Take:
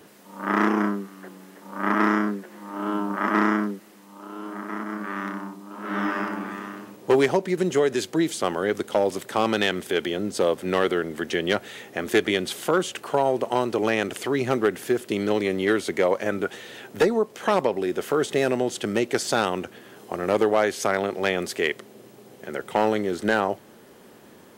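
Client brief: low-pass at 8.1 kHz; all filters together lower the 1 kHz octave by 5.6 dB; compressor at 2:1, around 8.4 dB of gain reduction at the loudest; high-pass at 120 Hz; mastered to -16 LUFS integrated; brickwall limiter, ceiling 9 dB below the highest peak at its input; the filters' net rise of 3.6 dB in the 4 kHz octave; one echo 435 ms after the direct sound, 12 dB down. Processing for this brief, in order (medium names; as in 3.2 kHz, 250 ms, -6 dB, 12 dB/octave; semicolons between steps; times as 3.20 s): high-pass 120 Hz; low-pass 8.1 kHz; peaking EQ 1 kHz -8 dB; peaking EQ 4 kHz +5.5 dB; compression 2:1, threshold -32 dBFS; peak limiter -24 dBFS; delay 435 ms -12 dB; trim +19 dB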